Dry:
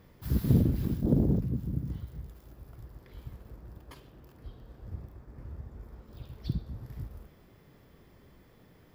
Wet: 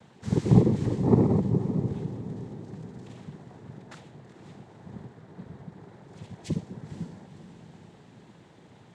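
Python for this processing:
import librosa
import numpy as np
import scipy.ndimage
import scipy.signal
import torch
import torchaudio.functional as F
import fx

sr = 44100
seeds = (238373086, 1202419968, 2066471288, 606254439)

y = fx.crossing_spikes(x, sr, level_db=-47.5, at=(2.62, 3.19))
y = fx.noise_vocoder(y, sr, seeds[0], bands=6)
y = fx.echo_diffused(y, sr, ms=518, feedback_pct=51, wet_db=-12.0)
y = F.gain(torch.from_numpy(y), 5.5).numpy()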